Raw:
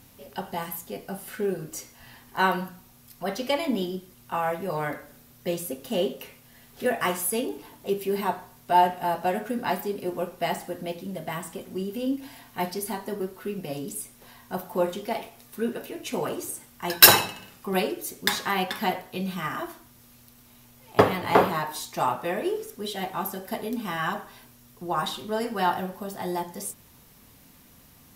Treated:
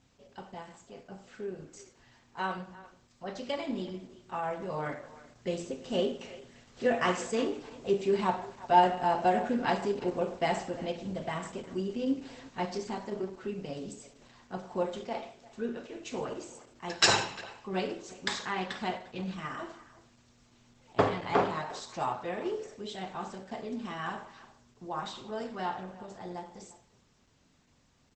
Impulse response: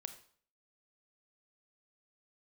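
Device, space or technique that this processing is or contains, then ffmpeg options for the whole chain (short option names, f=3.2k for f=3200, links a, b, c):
speakerphone in a meeting room: -filter_complex "[1:a]atrim=start_sample=2205[a];[0:a][a]afir=irnorm=-1:irlink=0,asplit=2[b][c];[c]adelay=350,highpass=300,lowpass=3.4k,asoftclip=type=hard:threshold=-14dB,volume=-18dB[d];[b][d]amix=inputs=2:normalize=0,dynaudnorm=f=810:g=13:m=12dB,volume=-7dB" -ar 48000 -c:a libopus -b:a 12k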